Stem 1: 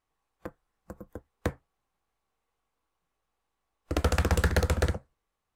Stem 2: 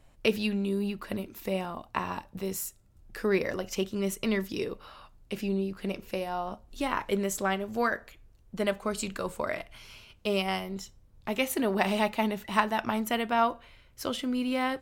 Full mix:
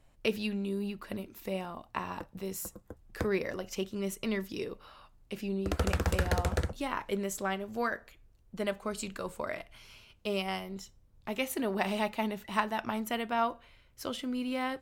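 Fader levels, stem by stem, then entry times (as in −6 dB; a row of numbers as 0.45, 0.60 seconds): −4.5, −4.5 decibels; 1.75, 0.00 seconds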